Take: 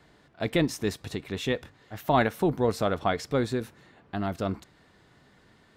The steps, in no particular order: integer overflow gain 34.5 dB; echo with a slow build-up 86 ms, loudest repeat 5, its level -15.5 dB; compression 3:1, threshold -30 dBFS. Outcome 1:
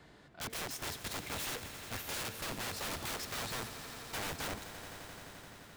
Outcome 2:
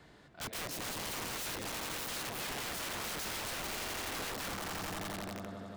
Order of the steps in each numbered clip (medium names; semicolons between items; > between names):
compression > integer overflow > echo with a slow build-up; echo with a slow build-up > compression > integer overflow